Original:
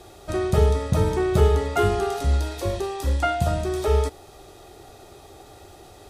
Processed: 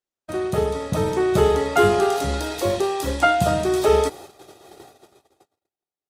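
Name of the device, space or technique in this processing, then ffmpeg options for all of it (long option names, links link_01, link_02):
video call: -af "highpass=150,dynaudnorm=framelen=390:gausssize=7:maxgain=7.5dB,agate=range=-51dB:threshold=-39dB:ratio=16:detection=peak" -ar 48000 -c:a libopus -b:a 32k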